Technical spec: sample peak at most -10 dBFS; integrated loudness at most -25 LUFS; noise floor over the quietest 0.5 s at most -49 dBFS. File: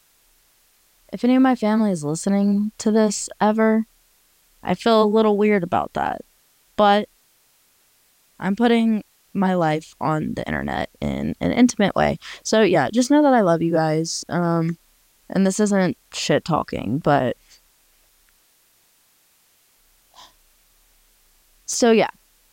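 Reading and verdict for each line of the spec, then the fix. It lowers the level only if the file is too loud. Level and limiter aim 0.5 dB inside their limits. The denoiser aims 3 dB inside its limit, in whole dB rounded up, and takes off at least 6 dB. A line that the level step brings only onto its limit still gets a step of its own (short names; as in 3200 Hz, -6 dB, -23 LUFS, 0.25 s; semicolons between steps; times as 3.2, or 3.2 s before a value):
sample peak -5.5 dBFS: fail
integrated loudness -20.0 LUFS: fail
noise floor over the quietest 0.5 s -60 dBFS: OK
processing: gain -5.5 dB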